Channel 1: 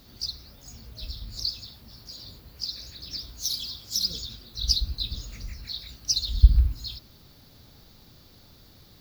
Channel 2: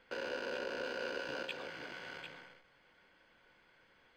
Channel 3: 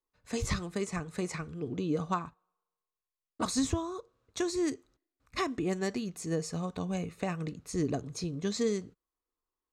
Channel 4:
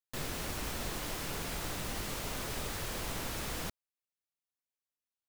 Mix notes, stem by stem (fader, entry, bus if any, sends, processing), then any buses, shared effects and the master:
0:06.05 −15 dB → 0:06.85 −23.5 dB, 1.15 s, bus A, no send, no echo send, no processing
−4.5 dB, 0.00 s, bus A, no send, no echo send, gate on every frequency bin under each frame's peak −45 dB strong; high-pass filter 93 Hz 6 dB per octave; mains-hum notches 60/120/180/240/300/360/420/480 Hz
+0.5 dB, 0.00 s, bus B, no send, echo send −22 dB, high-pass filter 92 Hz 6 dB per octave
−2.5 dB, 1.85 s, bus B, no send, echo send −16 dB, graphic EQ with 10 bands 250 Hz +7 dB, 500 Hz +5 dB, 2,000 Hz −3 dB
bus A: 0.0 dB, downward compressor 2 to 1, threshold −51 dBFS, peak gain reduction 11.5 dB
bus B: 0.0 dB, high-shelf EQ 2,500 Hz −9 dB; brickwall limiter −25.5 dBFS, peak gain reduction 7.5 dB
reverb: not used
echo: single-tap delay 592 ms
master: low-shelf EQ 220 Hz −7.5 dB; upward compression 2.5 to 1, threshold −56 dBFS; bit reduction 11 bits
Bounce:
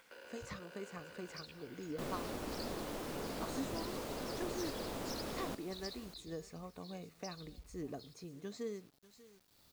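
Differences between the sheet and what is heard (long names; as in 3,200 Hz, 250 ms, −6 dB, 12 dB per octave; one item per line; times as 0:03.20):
stem 2 −4.5 dB → −11.5 dB
stem 3 +0.5 dB → −9.5 dB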